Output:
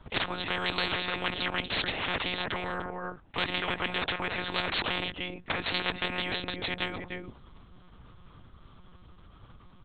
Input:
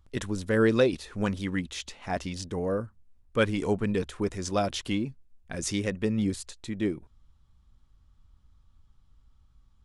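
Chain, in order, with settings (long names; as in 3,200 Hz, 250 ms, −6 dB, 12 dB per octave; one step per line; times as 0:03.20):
high-pass filter 110 Hz 24 dB per octave
high-shelf EQ 2,400 Hz −4 dB
far-end echo of a speakerphone 300 ms, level −14 dB
one-pitch LPC vocoder at 8 kHz 180 Hz
every bin compressed towards the loudest bin 10 to 1
level −2.5 dB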